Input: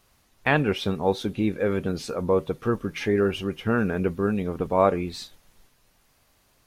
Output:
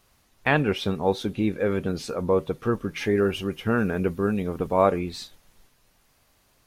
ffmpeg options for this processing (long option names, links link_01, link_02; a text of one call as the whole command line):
ffmpeg -i in.wav -filter_complex "[0:a]asettb=1/sr,asplit=3[link_01][link_02][link_03];[link_01]atrim=end=2.994[link_04];[link_02]atrim=start=2.99:end=4.99,asetpts=PTS-STARTPTS,afade=type=in:duration=0.004:curve=qsin,afade=type=out:start_time=1.996:duration=0.004:curve=qsin,highshelf=frequency=8100:gain=5.5[link_05];[link_03]atrim=start=4.986[link_06];[link_04][link_05]acrossfade=duration=0.004:curve1=hsin:curve2=qsin[link_07];[link_07][link_06]acrossfade=duration=0.004:curve1=qsin:curve2=hsin" out.wav